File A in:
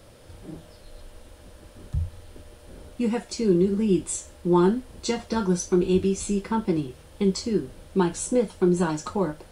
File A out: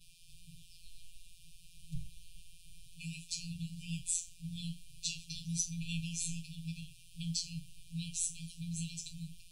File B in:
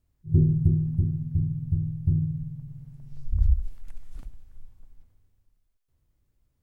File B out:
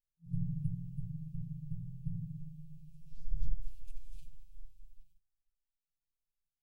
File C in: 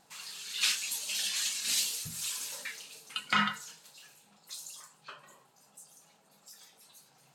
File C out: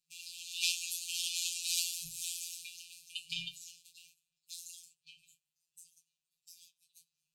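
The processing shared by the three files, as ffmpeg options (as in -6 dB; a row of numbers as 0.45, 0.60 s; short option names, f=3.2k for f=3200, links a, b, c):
-af "agate=range=-17dB:threshold=-56dB:ratio=16:detection=peak,afftfilt=real='hypot(re,im)*cos(PI*b)':imag='0':win_size=1024:overlap=0.75,afftfilt=real='re*(1-between(b*sr/4096,170,2300))':imag='im*(1-between(b*sr/4096,170,2300))':win_size=4096:overlap=0.75"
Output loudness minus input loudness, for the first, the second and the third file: -15.0, -16.5, -4.5 LU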